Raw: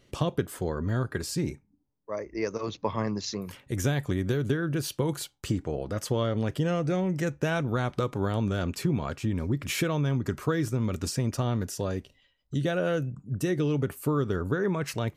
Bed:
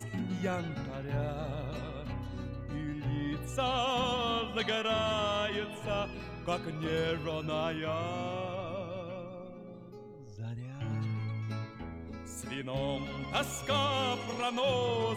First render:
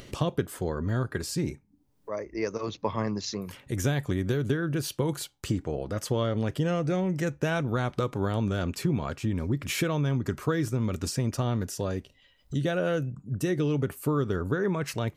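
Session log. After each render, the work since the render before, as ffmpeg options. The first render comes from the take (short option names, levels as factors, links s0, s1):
-af "acompressor=mode=upward:threshold=0.0178:ratio=2.5"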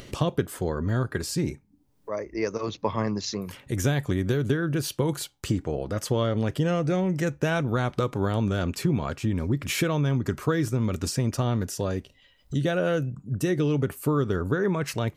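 -af "volume=1.33"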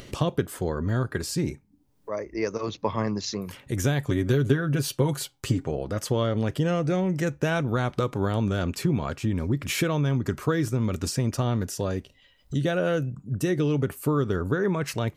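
-filter_complex "[0:a]asettb=1/sr,asplit=3[s0][s1][s2];[s0]atrim=end=4.084[s3];[s1]atrim=start=4.08:end=5.71,asetpts=PTS-STARTPTS,afade=t=in:d=0.004:c=qsin,afade=t=out:st=1.626:d=0.004:c=qsin,aecho=1:1:7.5:0.54,atrim=end_sample=71883[s4];[s2]atrim=start=5.706[s5];[s3][s4]acrossfade=d=0.004:c1=hsin:c2=qsin[s6];[s6][s5]acrossfade=d=0.004:c1=qsin:c2=hsin"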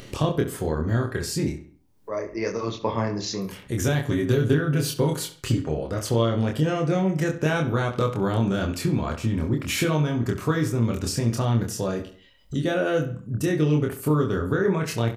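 -filter_complex "[0:a]asplit=2[s0][s1];[s1]adelay=26,volume=0.708[s2];[s0][s2]amix=inputs=2:normalize=0,asplit=2[s3][s4];[s4]adelay=67,lowpass=f=4400:p=1,volume=0.266,asplit=2[s5][s6];[s6]adelay=67,lowpass=f=4400:p=1,volume=0.42,asplit=2[s7][s8];[s8]adelay=67,lowpass=f=4400:p=1,volume=0.42,asplit=2[s9][s10];[s10]adelay=67,lowpass=f=4400:p=1,volume=0.42[s11];[s3][s5][s7][s9][s11]amix=inputs=5:normalize=0"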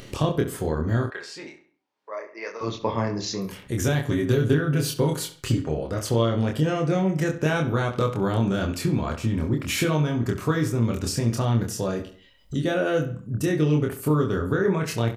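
-filter_complex "[0:a]asettb=1/sr,asplit=3[s0][s1][s2];[s0]atrim=end=1.104[s3];[s1]atrim=start=1.1:end=2.61,asetpts=PTS-STARTPTS,afade=t=in:d=0.004:c=qsin,afade=t=out:st=1.506:d=0.004:c=qsin,highpass=710,lowpass=3600[s4];[s2]atrim=start=2.606[s5];[s3][s4]acrossfade=d=0.004:c1=hsin:c2=qsin[s6];[s6][s5]acrossfade=d=0.004:c1=qsin:c2=hsin"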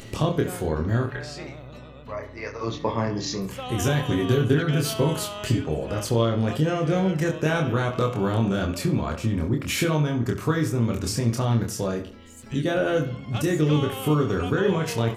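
-filter_complex "[1:a]volume=0.668[s0];[0:a][s0]amix=inputs=2:normalize=0"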